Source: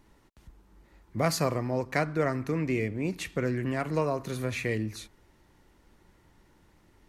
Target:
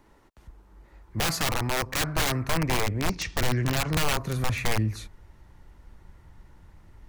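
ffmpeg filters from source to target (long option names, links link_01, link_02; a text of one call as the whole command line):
ffmpeg -i in.wav -filter_complex "[0:a]acrossover=split=340|1800[link_01][link_02][link_03];[link_02]acontrast=49[link_04];[link_01][link_04][link_03]amix=inputs=3:normalize=0,asettb=1/sr,asplit=3[link_05][link_06][link_07];[link_05]atrim=end=3.084[link_08];[link_06]atrim=start=3.08:end=3.91,asetpts=PTS-STARTPTS,afade=type=in:duration=0.004:curve=qsin,afade=type=out:start_time=0.826:duration=0.004:curve=qsin,lowpass=frequency=5600:width_type=q:width=3.9[link_09];[link_07]atrim=start=3.906[link_10];[link_08][link_09]acrossfade=duration=0.004:curve1=hsin:curve2=qsin[link_11];[link_11][link_10]acrossfade=duration=0.004:curve1=qsin:curve2=hsin,aeval=exprs='(mod(10*val(0)+1,2)-1)/10':channel_layout=same,asubboost=boost=5.5:cutoff=140" out.wav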